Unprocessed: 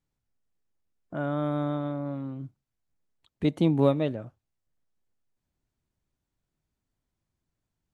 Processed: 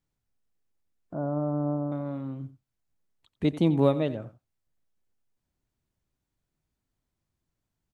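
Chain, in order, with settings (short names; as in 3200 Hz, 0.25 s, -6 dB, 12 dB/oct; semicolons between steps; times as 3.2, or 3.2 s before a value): 1.14–1.92 LPF 1000 Hz 24 dB/oct; echo 89 ms -15.5 dB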